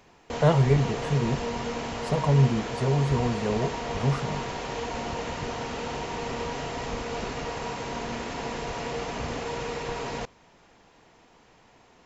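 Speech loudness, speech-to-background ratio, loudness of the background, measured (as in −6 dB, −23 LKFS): −26.0 LKFS, 6.5 dB, −32.5 LKFS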